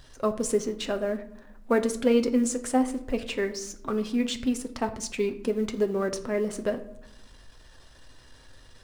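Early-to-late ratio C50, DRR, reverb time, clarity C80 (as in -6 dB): 13.5 dB, 6.5 dB, 0.80 s, 16.5 dB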